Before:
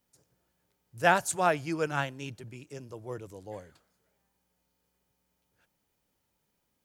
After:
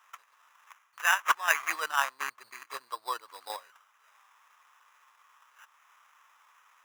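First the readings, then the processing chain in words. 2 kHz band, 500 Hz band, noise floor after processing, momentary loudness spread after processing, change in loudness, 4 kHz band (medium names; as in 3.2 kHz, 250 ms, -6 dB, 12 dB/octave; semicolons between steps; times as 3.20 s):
+4.0 dB, -13.0 dB, -67 dBFS, 17 LU, -1.5 dB, +5.5 dB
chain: time-frequency box 0.67–1.79 s, 1.5–11 kHz +11 dB; in parallel at -0.5 dB: level held to a coarse grid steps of 20 dB; on the sum: transient shaper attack +6 dB, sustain -6 dB; reverse; compression 16:1, threshold -25 dBFS, peak gain reduction 23.5 dB; reverse; sample-rate reducer 4.4 kHz, jitter 0%; resonant high-pass 1.1 kHz, resonance Q 4.9; tape noise reduction on one side only encoder only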